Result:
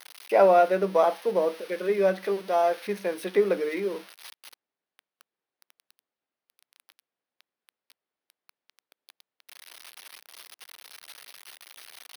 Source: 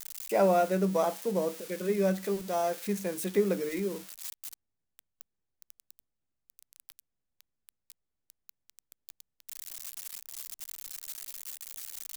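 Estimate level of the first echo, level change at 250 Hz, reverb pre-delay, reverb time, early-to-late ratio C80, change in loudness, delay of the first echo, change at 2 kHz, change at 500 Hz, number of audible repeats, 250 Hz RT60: no echo audible, −2.0 dB, no reverb audible, no reverb audible, no reverb audible, +7.0 dB, no echo audible, +6.5 dB, +6.0 dB, no echo audible, no reverb audible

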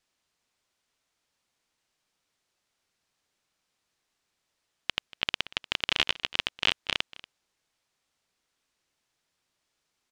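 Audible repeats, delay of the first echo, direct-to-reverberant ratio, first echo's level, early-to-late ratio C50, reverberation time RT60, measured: 1, 236 ms, no reverb audible, −19.5 dB, no reverb audible, no reverb audible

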